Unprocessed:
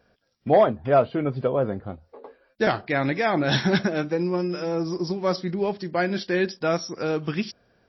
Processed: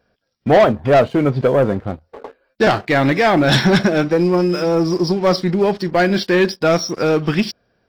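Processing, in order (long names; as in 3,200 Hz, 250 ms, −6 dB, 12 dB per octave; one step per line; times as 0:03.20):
leveller curve on the samples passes 2
level +3 dB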